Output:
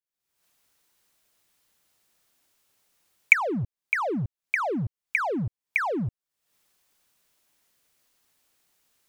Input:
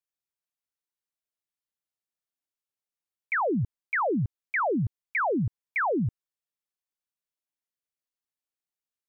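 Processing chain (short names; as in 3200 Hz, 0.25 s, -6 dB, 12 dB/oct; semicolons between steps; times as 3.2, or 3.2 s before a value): recorder AGC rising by 66 dB/s; sample leveller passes 1; gain -5 dB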